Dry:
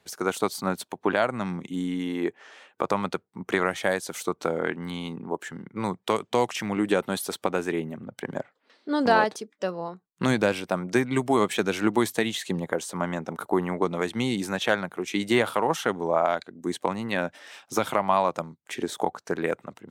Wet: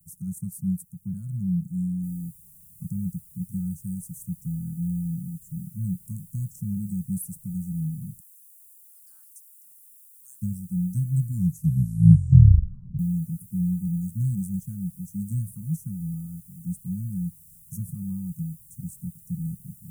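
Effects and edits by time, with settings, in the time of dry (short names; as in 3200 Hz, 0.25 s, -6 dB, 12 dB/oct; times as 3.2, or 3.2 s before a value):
2.03 noise floor step -61 dB -50 dB
8.2–10.42 inverse Chebyshev high-pass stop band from 380 Hz, stop band 50 dB
11.19 tape stop 1.80 s
whole clip: inverse Chebyshev band-stop 390–4100 Hz, stop band 50 dB; resonant low shelf 230 Hz +8 dB, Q 3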